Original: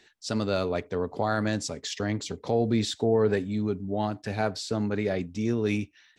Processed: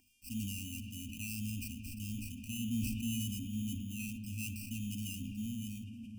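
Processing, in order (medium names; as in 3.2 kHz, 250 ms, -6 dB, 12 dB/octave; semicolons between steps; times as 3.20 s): fade out at the end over 1.09 s; in parallel at -3.5 dB: hard clipper -29.5 dBFS, distortion -5 dB; on the sum: sample-and-hold 13×; mains buzz 400 Hz, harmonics 33, -48 dBFS -8 dB/octave; brick-wall FIR band-stop 270–2400 Hz; static phaser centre 800 Hz, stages 8; on a send at -8 dB: reverberation RT60 7.1 s, pre-delay 26 ms; on the sum: decay stretcher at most 27 dB/s; trim -7 dB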